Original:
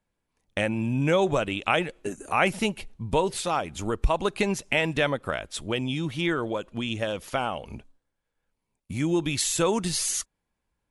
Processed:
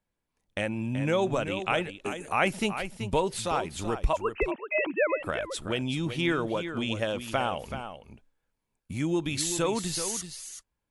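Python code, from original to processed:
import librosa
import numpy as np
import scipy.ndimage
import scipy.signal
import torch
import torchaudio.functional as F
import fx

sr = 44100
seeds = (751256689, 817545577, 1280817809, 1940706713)

y = fx.sine_speech(x, sr, at=(4.13, 5.2))
y = fx.rider(y, sr, range_db=10, speed_s=2.0)
y = y + 10.0 ** (-9.5 / 20.0) * np.pad(y, (int(380 * sr / 1000.0), 0))[:len(y)]
y = y * 10.0 ** (-3.5 / 20.0)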